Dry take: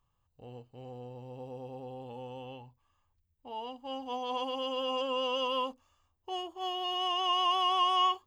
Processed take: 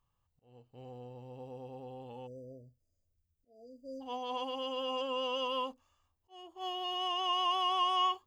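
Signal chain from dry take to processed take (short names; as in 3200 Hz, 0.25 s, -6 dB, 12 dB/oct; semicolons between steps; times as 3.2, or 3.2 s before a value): auto swell 0.405 s; spectral delete 2.27–4.01, 700–4600 Hz; gain -3 dB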